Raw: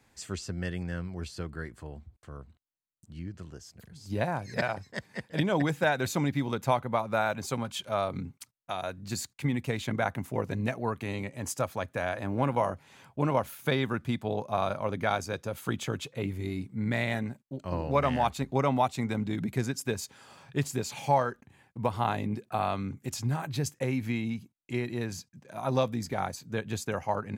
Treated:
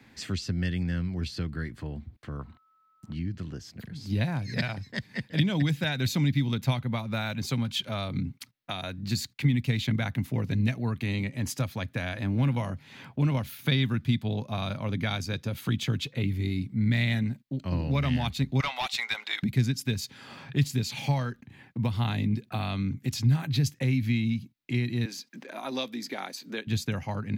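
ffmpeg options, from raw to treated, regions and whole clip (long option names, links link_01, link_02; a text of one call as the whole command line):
ffmpeg -i in.wav -filter_complex "[0:a]asettb=1/sr,asplit=3[link_01][link_02][link_03];[link_01]atrim=end=2.394[link_04];[link_02]atrim=start=2.39:end=3.15,asetpts=PTS-STARTPTS,afade=type=in:duration=0.004:curve=qsin,afade=type=out:start_time=0.756:duration=0.004:curve=qsin,aeval=exprs='val(0)+0.0001*sin(2*PI*1300*n/s)':channel_layout=same,equalizer=frequency=1000:width_type=o:width=1.2:gain=14.5[link_05];[link_03]atrim=start=3.146[link_06];[link_04][link_05]acrossfade=duration=0.004:curve1=hsin:curve2=qsin[link_07];[link_07][link_06]acrossfade=duration=0.004:curve1=qsin:curve2=hsin,asettb=1/sr,asplit=3[link_08][link_09][link_10];[link_08]atrim=end=18.604[link_11];[link_09]atrim=start=18.6:end=19.43,asetpts=PTS-STARTPTS,afade=type=in:duration=0.004:curve=qsin,afade=type=out:start_time=0.826:duration=0.004:curve=qsin,highpass=frequency=700:width=0.5412,highpass=frequency=700:width=1.3066,highshelf=frequency=3000:gain=10.5,asplit=2[link_12][link_13];[link_13]highpass=frequency=720:poles=1,volume=16dB,asoftclip=type=tanh:threshold=-12.5dB[link_14];[link_12][link_14]amix=inputs=2:normalize=0,lowpass=frequency=1600:poles=1,volume=-6dB[link_15];[link_10]atrim=start=19.426[link_16];[link_11][link_15]acrossfade=duration=0.004:curve1=hsin:curve2=qsin[link_17];[link_17][link_16]acrossfade=duration=0.004:curve1=qsin:curve2=hsin,asettb=1/sr,asplit=3[link_18][link_19][link_20];[link_18]atrim=end=25.054[link_21];[link_19]atrim=start=25.05:end=26.67,asetpts=PTS-STARTPTS,afade=type=in:duration=0.004:curve=qsin,afade=type=out:start_time=1.616:duration=0.004:curve=qsin,highpass=frequency=290:width=0.5412,highpass=frequency=290:width=1.3066,acompressor=mode=upward:threshold=-44dB:ratio=2.5:attack=3.2:release=140:knee=2.83:detection=peak[link_22];[link_20]atrim=start=26.666[link_23];[link_21][link_22]acrossfade=duration=0.004:curve1=hsin:curve2=qsin[link_24];[link_24][link_23]acrossfade=duration=0.004:curve1=qsin:curve2=hsin,equalizer=frequency=125:width_type=o:width=1:gain=5,equalizer=frequency=250:width_type=o:width=1:gain=10,equalizer=frequency=2000:width_type=o:width=1:gain=7,equalizer=frequency=4000:width_type=o:width=1:gain=6,equalizer=frequency=8000:width_type=o:width=1:gain=-8,acrossover=split=150|3000[link_25][link_26][link_27];[link_26]acompressor=threshold=-43dB:ratio=2.5[link_28];[link_25][link_28][link_27]amix=inputs=3:normalize=0,volume=3.5dB" out.wav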